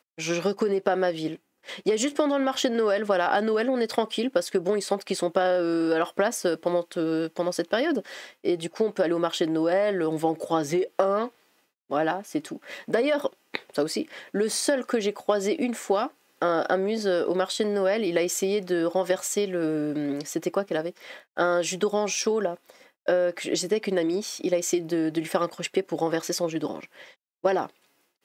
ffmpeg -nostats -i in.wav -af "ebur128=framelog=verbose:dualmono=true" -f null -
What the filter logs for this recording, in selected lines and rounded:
Integrated loudness:
  I:         -23.1 LUFS
  Threshold: -33.4 LUFS
Loudness range:
  LRA:         2.7 LU
  Threshold: -43.3 LUFS
  LRA low:   -24.8 LUFS
  LRA high:  -22.0 LUFS